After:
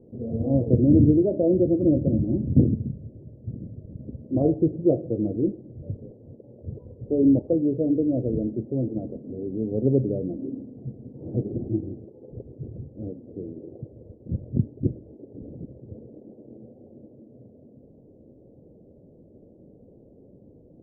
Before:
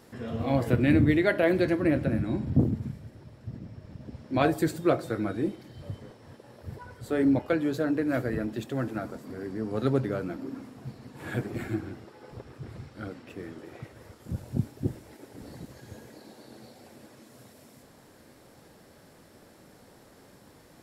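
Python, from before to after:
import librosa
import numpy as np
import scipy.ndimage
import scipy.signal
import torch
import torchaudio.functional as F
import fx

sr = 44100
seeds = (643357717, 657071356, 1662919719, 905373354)

y = scipy.signal.sosfilt(scipy.signal.butter(6, 550.0, 'lowpass', fs=sr, output='sos'), x)
y = y * librosa.db_to_amplitude(5.0)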